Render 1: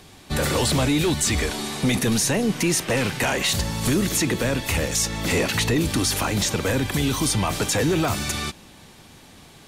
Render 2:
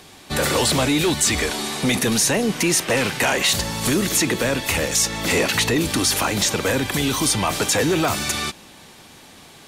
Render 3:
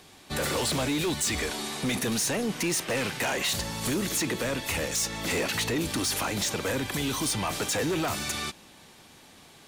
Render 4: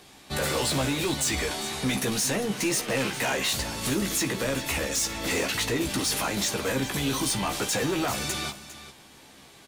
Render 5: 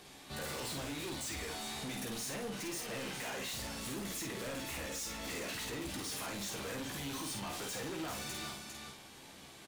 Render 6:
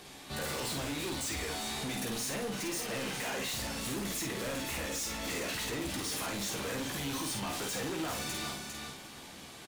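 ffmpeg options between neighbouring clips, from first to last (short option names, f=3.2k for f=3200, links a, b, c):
-af "lowshelf=f=180:g=-9.5,volume=4dB"
-af "asoftclip=type=hard:threshold=-16dB,volume=-7.5dB"
-filter_complex "[0:a]asplit=2[a][b];[b]adelay=15,volume=-5dB[c];[a][c]amix=inputs=2:normalize=0,aecho=1:1:61|403:0.1|0.2"
-filter_complex "[0:a]asoftclip=type=tanh:threshold=-32.5dB,alimiter=level_in=12dB:limit=-24dB:level=0:latency=1,volume=-12dB,asplit=2[a][b];[b]adelay=50,volume=-4dB[c];[a][c]amix=inputs=2:normalize=0,volume=-4dB"
-af "aecho=1:1:349|698|1047|1396|1745:0.158|0.0888|0.0497|0.0278|0.0156,volume=4.5dB"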